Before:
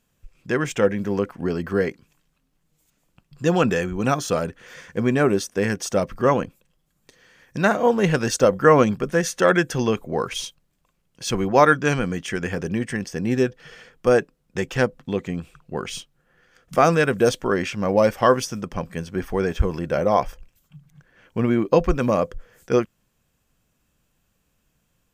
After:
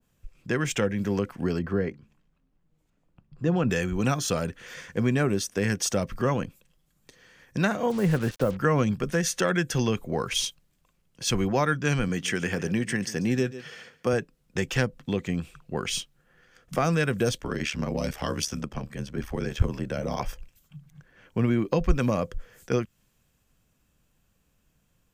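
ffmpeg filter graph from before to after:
ffmpeg -i in.wav -filter_complex "[0:a]asettb=1/sr,asplit=3[link_01][link_02][link_03];[link_01]atrim=end=1.594[link_04];[link_02]atrim=start=1.59:end=3.7,asetpts=PTS-STARTPTS,afade=type=in:duration=0.004:curve=qsin,afade=type=out:start_time=2.106:duration=0.004:curve=qsin,lowpass=frequency=1100:poles=1,bandreject=frequency=71.87:width_type=h:width=4,bandreject=frequency=143.74:width_type=h:width=4,bandreject=frequency=215.61:width_type=h:width=4[link_05];[link_03]atrim=start=3.696[link_06];[link_04][link_05]acrossfade=duration=0.004:curve1=hsin:curve2=qsin[link_07];[link_07][link_06]acrossfade=duration=0.004:curve1=qsin:curve2=hsin,asettb=1/sr,asplit=3[link_08][link_09][link_10];[link_08]atrim=end=7.904[link_11];[link_09]atrim=start=7.9:end=8.57,asetpts=PTS-STARTPTS,afade=type=in:duration=0.004:curve=qsin,afade=type=out:start_time=0.666:duration=0.004:curve=qsin,lowpass=1500,acrusher=bits=5:mix=0:aa=0.5[link_12];[link_10]atrim=start=8.566[link_13];[link_11][link_12]acrossfade=duration=0.004:curve1=hsin:curve2=qsin[link_14];[link_14][link_13]acrossfade=duration=0.004:curve1=qsin:curve2=hsin,asettb=1/sr,asplit=3[link_15][link_16][link_17];[link_15]atrim=end=12.084[link_18];[link_16]atrim=start=12.08:end=14.13,asetpts=PTS-STARTPTS,afade=type=in:duration=0.004:curve=qsin,afade=type=out:start_time=2.046:duration=0.004:curve=qsin,highpass=110,aecho=1:1:140:0.133,atrim=end_sample=90405[link_19];[link_17]atrim=start=14.126[link_20];[link_18][link_19]acrossfade=duration=0.004:curve1=hsin:curve2=qsin[link_21];[link_21][link_20]acrossfade=duration=0.004:curve1=qsin:curve2=hsin,asettb=1/sr,asplit=3[link_22][link_23][link_24];[link_22]atrim=end=17.374[link_25];[link_23]atrim=start=17.37:end=20.2,asetpts=PTS-STARTPTS,afade=type=in:duration=0.004:curve=qsin,afade=type=out:start_time=2.826:duration=0.004:curve=qsin,highshelf=frequency=11000:gain=-4.5,acrossover=split=240|3000[link_26][link_27][link_28];[link_27]acompressor=threshold=-28dB:ratio=2.5:attack=3.2:release=140:knee=2.83:detection=peak[link_29];[link_26][link_29][link_28]amix=inputs=3:normalize=0,aeval=exprs='val(0)*sin(2*PI*36*n/s)':channel_layout=same[link_30];[link_24]atrim=start=20.196[link_31];[link_25][link_30]acrossfade=duration=0.004:curve1=hsin:curve2=qsin[link_32];[link_32][link_31]acrossfade=duration=0.004:curve1=qsin:curve2=hsin,lowshelf=frequency=230:gain=3.5,acrossover=split=190[link_33][link_34];[link_34]acompressor=threshold=-25dB:ratio=2.5[link_35];[link_33][link_35]amix=inputs=2:normalize=0,adynamicequalizer=threshold=0.01:dfrequency=1600:dqfactor=0.7:tfrequency=1600:tqfactor=0.7:attack=5:release=100:ratio=0.375:range=3:mode=boostabove:tftype=highshelf,volume=-2dB" out.wav

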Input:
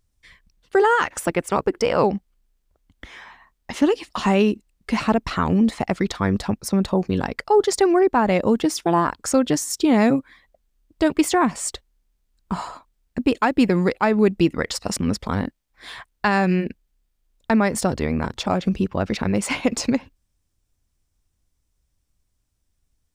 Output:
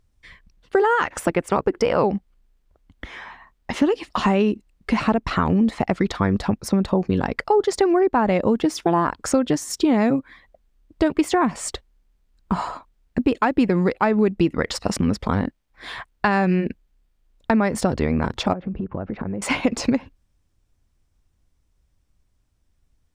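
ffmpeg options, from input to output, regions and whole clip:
ffmpeg -i in.wav -filter_complex "[0:a]asettb=1/sr,asplit=3[link_01][link_02][link_03];[link_01]atrim=end=18.534[link_04];[link_02]atrim=start=18.53:end=19.42,asetpts=PTS-STARTPTS,afade=type=in:duration=0.004:curve=qsin,afade=type=out:start_time=0.886:duration=0.004:curve=qsin,lowpass=1300,acompressor=threshold=-28dB:ratio=16:attack=3.2:release=140:knee=1:detection=peak[link_05];[link_03]atrim=start=19.416[link_06];[link_04][link_05]acrossfade=duration=0.004:curve1=hsin:curve2=qsin[link_07];[link_07][link_06]acrossfade=duration=0.004:curve1=qsin:curve2=hsin,highshelf=frequency=4500:gain=-10.5,acompressor=threshold=-23dB:ratio=2.5,volume=5.5dB" out.wav

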